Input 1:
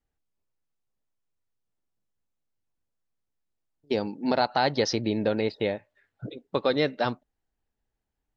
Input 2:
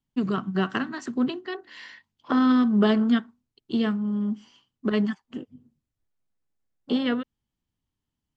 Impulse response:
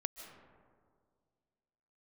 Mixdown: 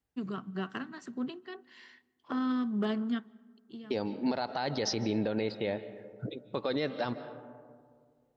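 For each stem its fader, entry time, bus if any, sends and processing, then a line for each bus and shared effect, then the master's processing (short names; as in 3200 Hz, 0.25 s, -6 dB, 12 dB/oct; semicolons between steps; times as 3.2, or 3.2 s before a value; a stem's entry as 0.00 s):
-3.5 dB, 0.00 s, send -7 dB, dry
-12.0 dB, 0.00 s, send -17.5 dB, hard clip -11.5 dBFS, distortion -36 dB; auto duck -17 dB, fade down 0.20 s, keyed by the first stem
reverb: on, RT60 2.0 s, pre-delay 0.11 s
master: HPF 51 Hz; limiter -21 dBFS, peak gain reduction 11 dB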